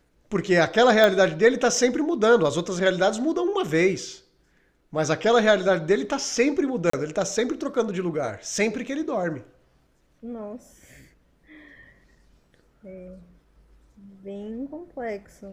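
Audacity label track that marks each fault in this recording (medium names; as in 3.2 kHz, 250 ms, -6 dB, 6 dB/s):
1.040000	1.040000	pop -7 dBFS
6.900000	6.930000	dropout 34 ms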